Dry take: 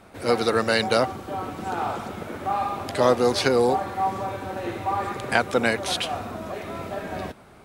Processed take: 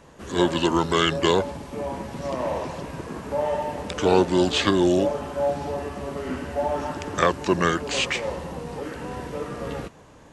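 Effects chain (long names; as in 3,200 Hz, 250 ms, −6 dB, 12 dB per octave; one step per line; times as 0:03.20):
parametric band 7,800 Hz +3 dB 2.3 octaves
wrong playback speed 45 rpm record played at 33 rpm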